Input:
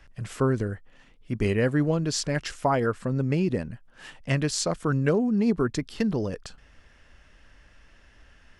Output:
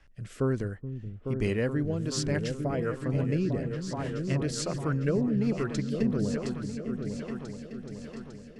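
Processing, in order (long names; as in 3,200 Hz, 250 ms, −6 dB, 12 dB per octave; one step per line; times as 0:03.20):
echo whose low-pass opens from repeat to repeat 426 ms, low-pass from 200 Hz, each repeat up 2 octaves, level −3 dB
rotating-speaker cabinet horn 1.2 Hz
level −3.5 dB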